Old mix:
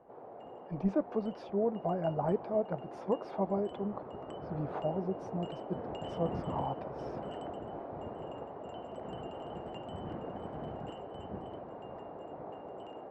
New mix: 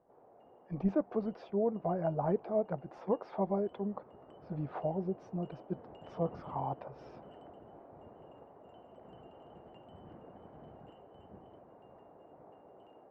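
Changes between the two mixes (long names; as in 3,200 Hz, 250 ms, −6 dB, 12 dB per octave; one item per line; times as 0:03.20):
background −11.5 dB
master: add high-frequency loss of the air 110 metres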